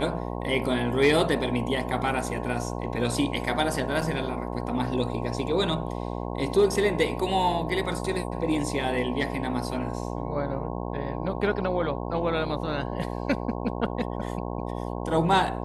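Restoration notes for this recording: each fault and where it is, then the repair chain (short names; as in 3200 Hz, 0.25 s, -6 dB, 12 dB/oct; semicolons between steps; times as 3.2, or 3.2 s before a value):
buzz 60 Hz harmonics 18 -32 dBFS
4.01 gap 4.8 ms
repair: de-hum 60 Hz, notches 18; interpolate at 4.01, 4.8 ms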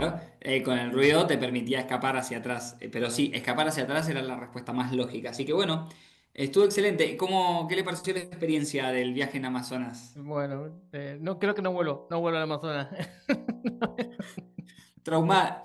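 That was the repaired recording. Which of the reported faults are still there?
none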